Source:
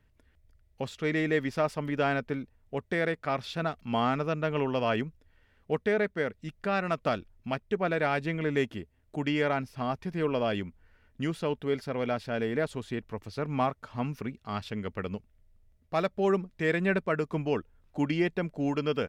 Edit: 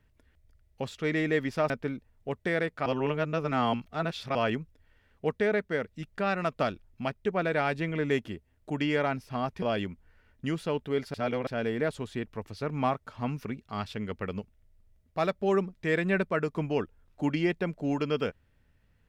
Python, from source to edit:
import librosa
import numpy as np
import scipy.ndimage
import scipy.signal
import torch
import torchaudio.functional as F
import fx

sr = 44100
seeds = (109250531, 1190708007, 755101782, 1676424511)

y = fx.edit(x, sr, fx.cut(start_s=1.7, length_s=0.46),
    fx.reverse_span(start_s=3.32, length_s=1.49),
    fx.cut(start_s=10.08, length_s=0.3),
    fx.reverse_span(start_s=11.9, length_s=0.33), tone=tone)